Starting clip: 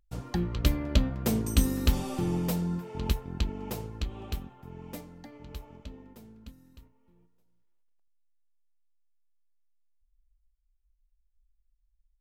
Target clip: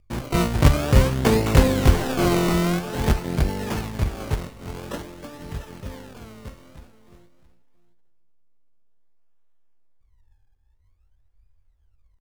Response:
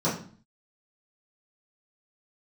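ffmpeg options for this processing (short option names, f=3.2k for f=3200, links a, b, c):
-filter_complex "[0:a]bandreject=f=184.6:t=h:w=4,bandreject=f=369.2:t=h:w=4,bandreject=f=553.8:t=h:w=4,bandreject=f=738.4:t=h:w=4,bandreject=f=923:t=h:w=4,bandreject=f=1.1076k:t=h:w=4,bandreject=f=1.2922k:t=h:w=4,bandreject=f=1.4768k:t=h:w=4,bandreject=f=1.6614k:t=h:w=4,bandreject=f=1.846k:t=h:w=4,bandreject=f=2.0306k:t=h:w=4,bandreject=f=2.2152k:t=h:w=4,acrusher=samples=36:mix=1:aa=0.000001:lfo=1:lforange=36:lforate=0.5,asplit=2[a][b];[b]asetrate=88200,aresample=44100,atempo=0.5,volume=-2dB[c];[a][c]amix=inputs=2:normalize=0,asplit=2[d][e];[e]aecho=0:1:670:0.158[f];[d][f]amix=inputs=2:normalize=0,volume=7dB"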